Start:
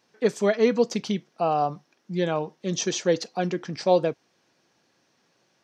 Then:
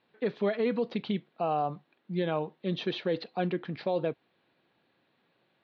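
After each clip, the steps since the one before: Chebyshev low-pass 4 kHz, order 5; peak limiter -17 dBFS, peak gain reduction 9 dB; trim -3 dB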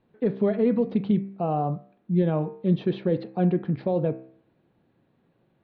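tilt EQ -4.5 dB/octave; de-hum 65.23 Hz, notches 40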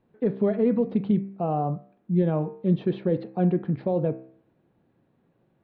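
treble shelf 3 kHz -8.5 dB

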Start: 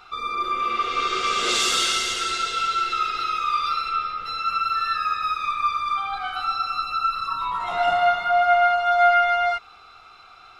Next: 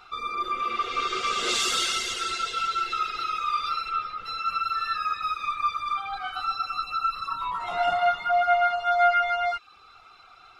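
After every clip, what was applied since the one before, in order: reverb removal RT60 0.56 s; trim -2.5 dB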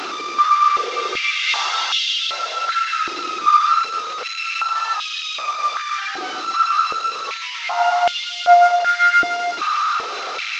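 one-bit delta coder 32 kbps, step -24 dBFS; step-sequenced high-pass 2.6 Hz 330–3100 Hz; trim +2 dB

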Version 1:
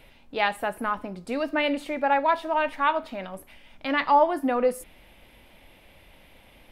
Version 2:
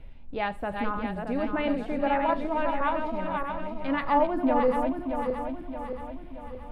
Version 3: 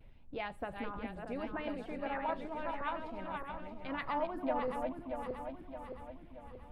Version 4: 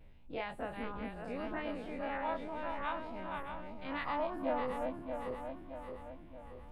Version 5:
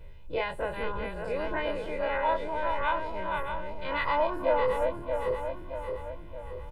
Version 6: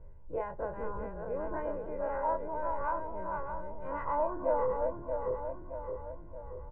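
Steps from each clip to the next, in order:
backward echo that repeats 312 ms, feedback 70%, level -4.5 dB; RIAA curve playback; trim -5.5 dB
harmonic-percussive split harmonic -9 dB; vibrato 0.75 Hz 35 cents; trim -5 dB
every event in the spectrogram widened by 60 ms; trim -4 dB
comb 2 ms, depth 79%; trim +7 dB
low-pass 1.3 kHz 24 dB/octave; trim -4 dB

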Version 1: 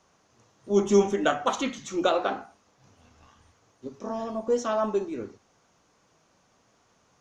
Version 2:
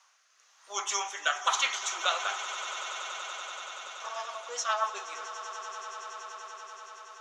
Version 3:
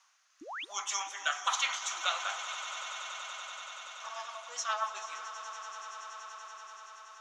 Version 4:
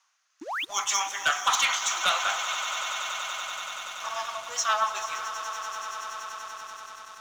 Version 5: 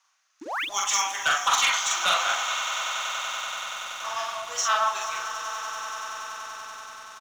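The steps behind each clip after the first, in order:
high-pass 990 Hz 24 dB/octave; rotary cabinet horn 1 Hz, later 7.5 Hz, at 2.99 s; on a send: echo with a slow build-up 95 ms, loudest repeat 8, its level -16.5 dB; on the sum: trim +8 dB
painted sound rise, 0.41–0.65 s, 270–3900 Hz -36 dBFS; peaking EQ 420 Hz -14 dB 0.73 oct; echo whose repeats swap between lows and highs 217 ms, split 1.1 kHz, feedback 60%, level -10 dB; trim -3 dB
waveshaping leveller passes 2; trim +1.5 dB
doubling 44 ms -2 dB

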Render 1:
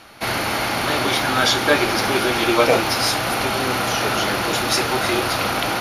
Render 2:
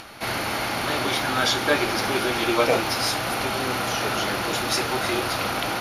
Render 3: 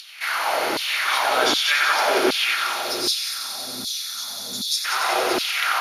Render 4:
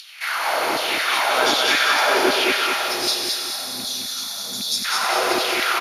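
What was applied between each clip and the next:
upward compressor, threshold -30 dBFS; trim -4.5 dB
time-frequency box 2.55–4.85 s, 260–3300 Hz -22 dB; multi-head delay 92 ms, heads first and second, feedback 74%, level -9 dB; LFO high-pass saw down 1.3 Hz 300–4000 Hz
rattle on loud lows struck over -35 dBFS, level -25 dBFS; on a send: feedback delay 215 ms, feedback 43%, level -4 dB

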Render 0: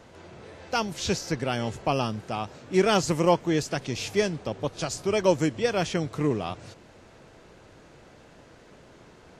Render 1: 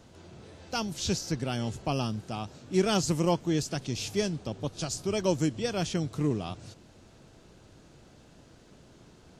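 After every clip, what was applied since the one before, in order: graphic EQ 500/1000/2000 Hz -6/-5/-8 dB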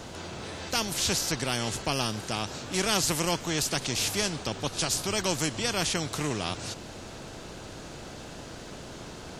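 spectrum-flattening compressor 2:1; trim +3 dB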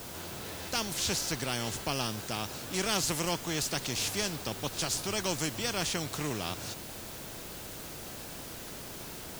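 added noise white -42 dBFS; trim -4 dB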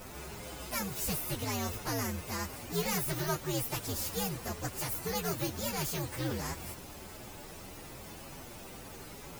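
frequency axis rescaled in octaves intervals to 128%; trim +2.5 dB

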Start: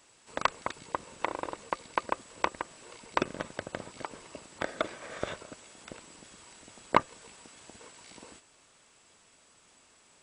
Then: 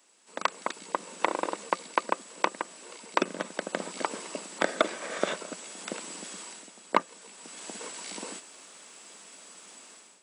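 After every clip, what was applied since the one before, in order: elliptic high-pass 180 Hz, stop band 40 dB; treble shelf 5.7 kHz +6 dB; level rider gain up to 14.5 dB; trim -4 dB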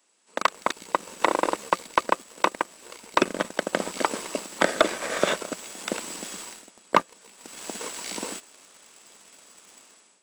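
waveshaping leveller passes 2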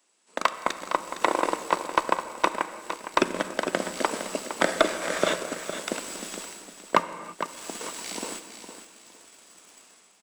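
feedback delay 460 ms, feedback 26%, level -10 dB; on a send at -10.5 dB: reverberation, pre-delay 3 ms; on the sum: trim -1.5 dB

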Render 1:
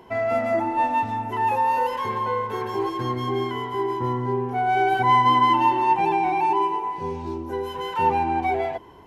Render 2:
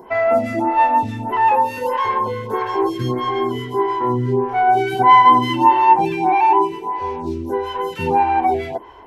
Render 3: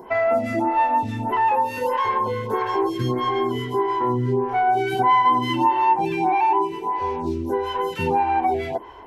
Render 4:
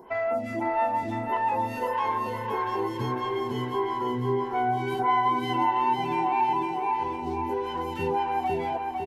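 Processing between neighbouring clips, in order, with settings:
lamp-driven phase shifter 1.6 Hz; trim +8.5 dB
compression 2:1, threshold -20 dBFS, peak gain reduction 7.5 dB
feedback delay 504 ms, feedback 48%, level -4 dB; trim -7.5 dB

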